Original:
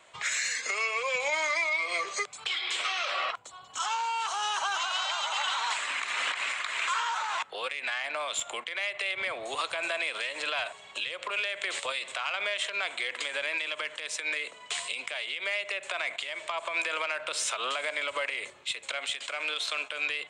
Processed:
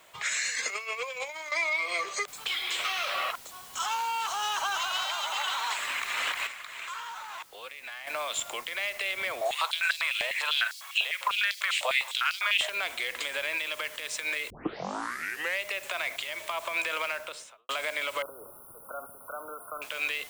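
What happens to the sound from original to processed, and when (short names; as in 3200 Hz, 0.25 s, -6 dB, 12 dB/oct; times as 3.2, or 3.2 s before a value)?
0.49–1.52 negative-ratio compressor -34 dBFS, ratio -0.5
2.28 noise floor step -64 dB -49 dB
5.04–5.81 Chebyshev high-pass 290 Hz
6.47–8.07 gain -9 dB
9.41–12.69 stepped high-pass 10 Hz 680–4600 Hz
14.5 tape start 1.13 s
17.05–17.69 studio fade out
18.22–19.82 brick-wall FIR band-stop 1500–9300 Hz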